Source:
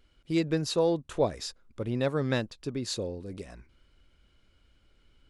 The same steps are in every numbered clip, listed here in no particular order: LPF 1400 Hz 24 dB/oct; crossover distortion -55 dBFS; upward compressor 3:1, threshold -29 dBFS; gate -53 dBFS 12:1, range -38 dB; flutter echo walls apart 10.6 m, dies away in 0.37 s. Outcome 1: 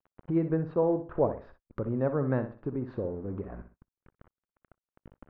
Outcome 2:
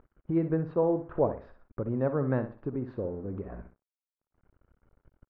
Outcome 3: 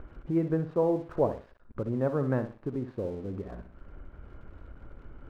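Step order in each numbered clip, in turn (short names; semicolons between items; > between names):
crossover distortion > LPF > upward compressor > flutter echo > gate; gate > flutter echo > upward compressor > crossover distortion > LPF; flutter echo > upward compressor > gate > LPF > crossover distortion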